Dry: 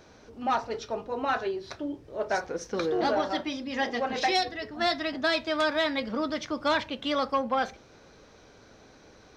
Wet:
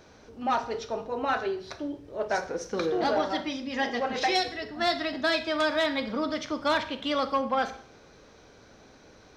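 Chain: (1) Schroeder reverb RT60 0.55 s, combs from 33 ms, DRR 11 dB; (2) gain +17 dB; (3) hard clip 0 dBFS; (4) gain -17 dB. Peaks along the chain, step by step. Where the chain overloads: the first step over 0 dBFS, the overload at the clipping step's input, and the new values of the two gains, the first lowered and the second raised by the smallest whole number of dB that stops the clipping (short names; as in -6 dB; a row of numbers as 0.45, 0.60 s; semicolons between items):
-14.0, +3.0, 0.0, -17.0 dBFS; step 2, 3.0 dB; step 2 +14 dB, step 4 -14 dB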